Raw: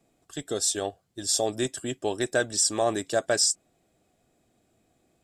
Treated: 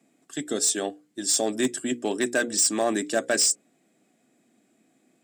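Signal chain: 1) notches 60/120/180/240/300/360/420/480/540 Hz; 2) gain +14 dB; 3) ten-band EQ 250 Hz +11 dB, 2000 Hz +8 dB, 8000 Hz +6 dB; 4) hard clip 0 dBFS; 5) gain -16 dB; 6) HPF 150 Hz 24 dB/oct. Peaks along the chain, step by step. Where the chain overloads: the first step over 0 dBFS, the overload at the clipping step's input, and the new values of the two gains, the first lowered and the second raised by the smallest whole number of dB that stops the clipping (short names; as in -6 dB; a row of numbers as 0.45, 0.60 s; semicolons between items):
-9.5, +4.5, +9.5, 0.0, -16.0, -10.0 dBFS; step 2, 9.5 dB; step 2 +4 dB, step 5 -6 dB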